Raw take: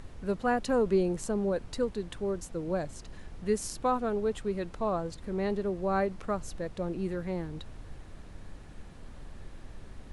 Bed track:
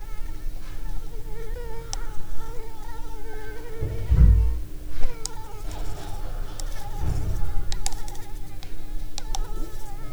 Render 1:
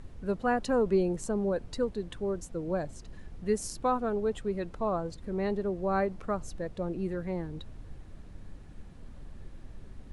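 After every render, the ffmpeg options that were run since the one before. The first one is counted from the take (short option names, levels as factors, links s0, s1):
-af "afftdn=nr=6:nf=-48"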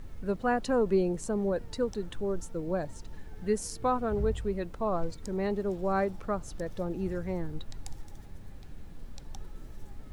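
-filter_complex "[1:a]volume=0.126[s0];[0:a][s0]amix=inputs=2:normalize=0"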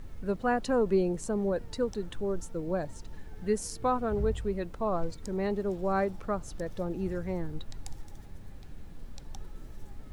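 -af anull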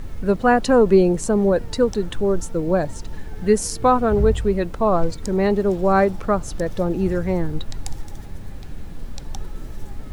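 -af "volume=3.98"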